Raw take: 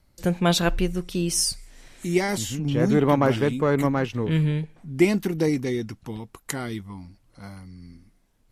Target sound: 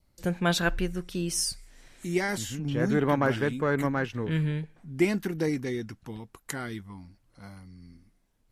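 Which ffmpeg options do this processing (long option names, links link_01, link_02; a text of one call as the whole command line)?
ffmpeg -i in.wav -af "adynamicequalizer=threshold=0.00501:dfrequency=1600:dqfactor=3:tfrequency=1600:tqfactor=3:attack=5:release=100:ratio=0.375:range=4:mode=boostabove:tftype=bell,volume=-5.5dB" out.wav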